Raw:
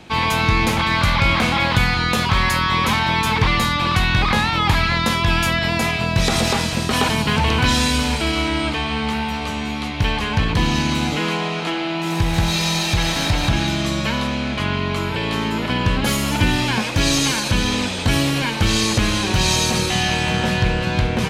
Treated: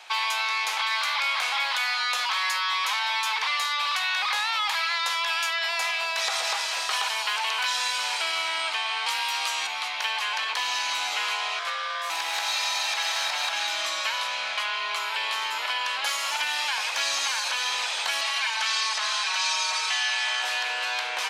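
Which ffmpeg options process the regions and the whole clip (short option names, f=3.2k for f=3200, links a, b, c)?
-filter_complex "[0:a]asettb=1/sr,asplit=3[a][b][c];[a]atrim=end=9.064[d];[b]atrim=start=9.06:end=9.67,asetpts=PTS-STARTPTS,afade=t=in:d=0.004:c=qsin,afade=t=out:st=0.606:d=0.004:c=qsin,equalizer=f=13k:t=o:w=2.1:g=14,afreqshift=59[e];[c]atrim=start=9.666[f];[d][e]acrossfade=d=0.004:c1=hsin:c2=qsin[g];[g][f]acrossfade=d=0.004:c1=qsin:c2=hsin,asettb=1/sr,asplit=3[h][i][j];[h]atrim=end=11.594[k];[i]atrim=start=11.59:end=12.1,asetpts=PTS-STARTPTS,afade=t=in:d=0.004:c=qsin,afade=t=out:st=0.506:d=0.004:c=qsin,equalizer=f=3.8k:t=o:w=0.88:g=-5,aeval=exprs='val(0)*sin(2*PI*860*n/s)':c=same,bandreject=f=1.8k:w=23[l];[j]atrim=start=12.096[m];[k][l]acrossfade=d=0.004:c1=hsin:c2=qsin[n];[n][m]acrossfade=d=0.004:c1=qsin:c2=hsin,asettb=1/sr,asplit=3[o][p][q];[o]atrim=end=18.214[r];[p]atrim=start=18.21:end=20.42,asetpts=PTS-STARTPTS,afade=t=in:d=0.004:c=qsin,afade=t=out:st=2.206:d=0.004:c=qsin,highpass=650,lowpass=7.5k,aecho=1:1:4.6:0.89,atrim=end_sample=97461[s];[q]atrim=start=20.416[t];[r][s]acrossfade=d=0.004:c1=hsin:c2=qsin[u];[u][t]acrossfade=d=0.004:c1=qsin:c2=hsin,highpass=f=780:w=0.5412,highpass=f=780:w=1.3066,equalizer=f=5.5k:w=1.5:g=2,acrossover=split=2400|7600[v][w][x];[v]acompressor=threshold=-29dB:ratio=4[y];[w]acompressor=threshold=-29dB:ratio=4[z];[x]acompressor=threshold=-45dB:ratio=4[aa];[y][z][aa]amix=inputs=3:normalize=0"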